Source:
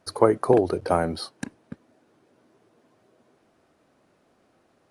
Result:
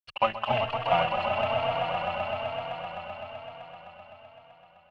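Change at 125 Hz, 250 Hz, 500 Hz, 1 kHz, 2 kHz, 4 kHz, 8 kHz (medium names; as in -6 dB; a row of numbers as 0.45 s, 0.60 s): -4.5 dB, -14.0 dB, -5.0 dB, +3.0 dB, +7.0 dB, +6.0 dB, under -20 dB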